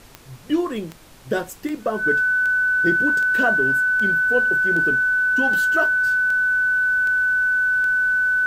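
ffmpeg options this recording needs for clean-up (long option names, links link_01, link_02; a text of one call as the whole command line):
ffmpeg -i in.wav -af "adeclick=threshold=4,bandreject=frequency=1500:width=30,agate=range=-21dB:threshold=-33dB" out.wav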